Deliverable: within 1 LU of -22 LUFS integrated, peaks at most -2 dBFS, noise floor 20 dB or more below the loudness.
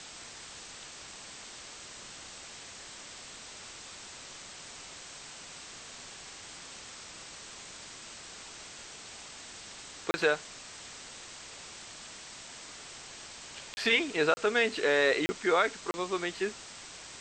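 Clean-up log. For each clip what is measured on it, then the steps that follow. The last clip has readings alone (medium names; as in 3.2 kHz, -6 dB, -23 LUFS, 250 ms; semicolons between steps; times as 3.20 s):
dropouts 5; longest dropout 30 ms; noise floor -47 dBFS; noise floor target -55 dBFS; loudness -35.0 LUFS; peak level -12.0 dBFS; loudness target -22.0 LUFS
-> interpolate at 10.11/13.74/14.34/15.26/15.91 s, 30 ms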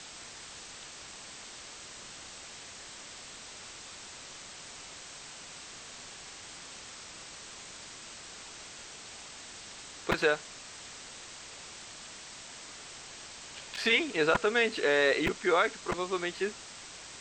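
dropouts 0; noise floor -47 dBFS; noise floor target -55 dBFS
-> noise reduction 8 dB, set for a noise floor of -47 dBFS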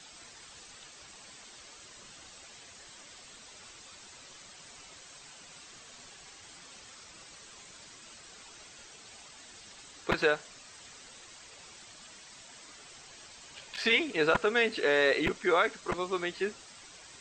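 noise floor -52 dBFS; loudness -28.5 LUFS; peak level -12.0 dBFS; loudness target -22.0 LUFS
-> trim +6.5 dB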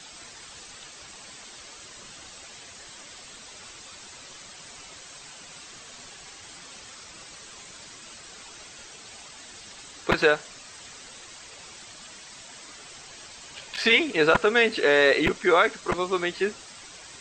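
loudness -22.0 LUFS; peak level -5.5 dBFS; noise floor -46 dBFS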